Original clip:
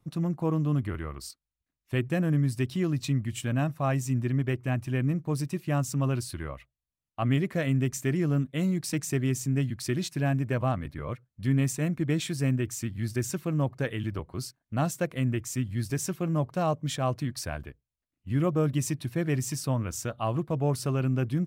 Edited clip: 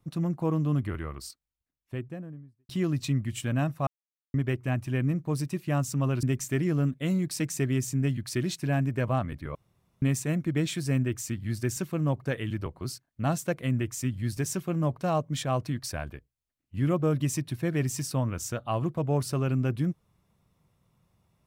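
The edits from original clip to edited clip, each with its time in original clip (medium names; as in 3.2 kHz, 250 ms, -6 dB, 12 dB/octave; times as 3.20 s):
1.17–2.69 s: studio fade out
3.87–4.34 s: mute
6.23–7.76 s: delete
11.08–11.55 s: room tone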